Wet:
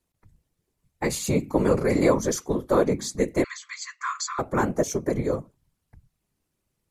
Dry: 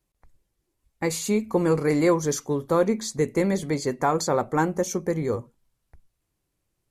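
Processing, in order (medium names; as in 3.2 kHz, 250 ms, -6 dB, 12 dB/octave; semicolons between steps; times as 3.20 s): whisper effect; 3.44–4.39 s: brick-wall FIR band-pass 1–8 kHz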